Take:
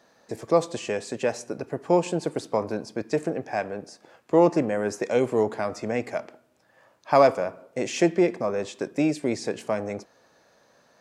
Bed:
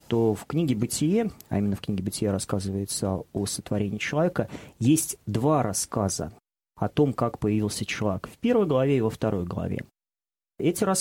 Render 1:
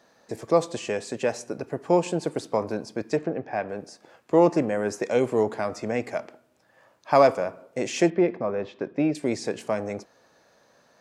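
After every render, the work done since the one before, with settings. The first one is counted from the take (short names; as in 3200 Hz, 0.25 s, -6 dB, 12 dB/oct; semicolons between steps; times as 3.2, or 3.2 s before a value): 3.17–3.69 air absorption 210 m; 8.1–9.15 air absorption 290 m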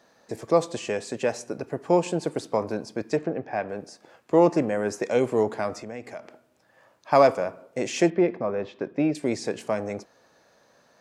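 5.8–7.12 compressor 2:1, threshold -40 dBFS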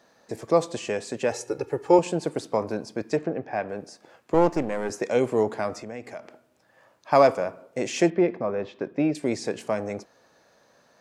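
1.31–1.99 comb 2.3 ms, depth 89%; 4.34–4.9 half-wave gain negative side -7 dB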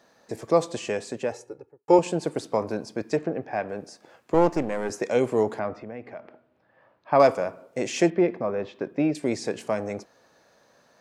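0.92–1.88 studio fade out; 5.59–7.2 air absorption 350 m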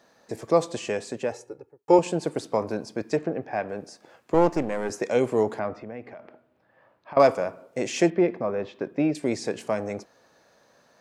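6.09–7.17 compressor, threshold -37 dBFS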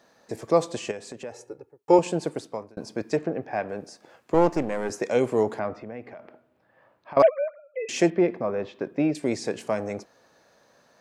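0.91–1.43 compressor 2:1, threshold -39 dBFS; 2.21–2.77 fade out; 7.22–7.89 sine-wave speech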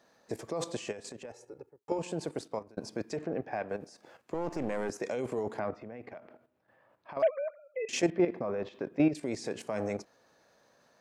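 limiter -15.5 dBFS, peak gain reduction 9.5 dB; level quantiser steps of 11 dB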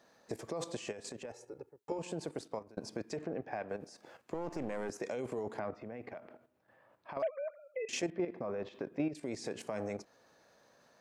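compressor 2:1, threshold -38 dBFS, peak gain reduction 9.5 dB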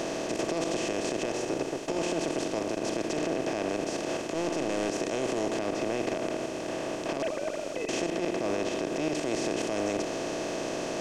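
per-bin compression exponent 0.2; limiter -19 dBFS, peak gain reduction 7 dB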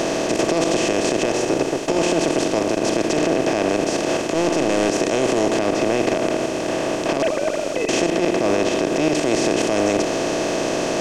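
gain +11 dB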